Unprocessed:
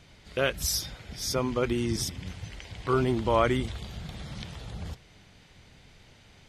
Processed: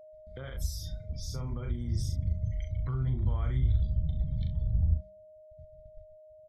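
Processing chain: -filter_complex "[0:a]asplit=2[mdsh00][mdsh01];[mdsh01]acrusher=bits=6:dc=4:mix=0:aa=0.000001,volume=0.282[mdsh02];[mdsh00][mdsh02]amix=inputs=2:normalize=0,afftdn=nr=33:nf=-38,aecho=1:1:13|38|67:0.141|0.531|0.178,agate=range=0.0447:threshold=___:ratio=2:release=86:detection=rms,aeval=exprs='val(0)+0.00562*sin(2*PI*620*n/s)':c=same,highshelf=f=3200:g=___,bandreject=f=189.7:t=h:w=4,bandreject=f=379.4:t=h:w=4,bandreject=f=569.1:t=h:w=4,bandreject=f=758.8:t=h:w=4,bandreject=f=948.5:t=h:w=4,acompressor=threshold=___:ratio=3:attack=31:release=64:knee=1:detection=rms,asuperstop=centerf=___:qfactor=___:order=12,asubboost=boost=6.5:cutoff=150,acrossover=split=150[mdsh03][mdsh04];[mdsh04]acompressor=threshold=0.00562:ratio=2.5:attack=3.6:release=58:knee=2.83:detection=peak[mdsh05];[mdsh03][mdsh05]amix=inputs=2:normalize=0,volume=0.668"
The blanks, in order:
0.00178, 2.5, 0.0355, 2700, 3.9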